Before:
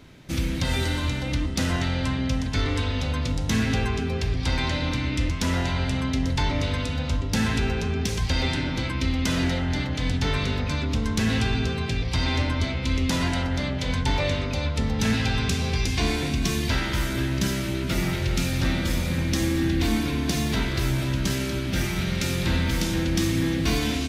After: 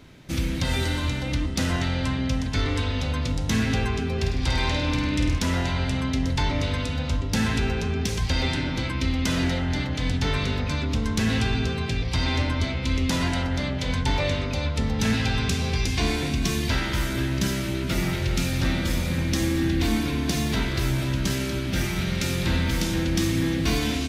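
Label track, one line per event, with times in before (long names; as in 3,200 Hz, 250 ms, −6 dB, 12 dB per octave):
4.130000	5.390000	flutter between parallel walls apart 8.7 metres, dies away in 0.59 s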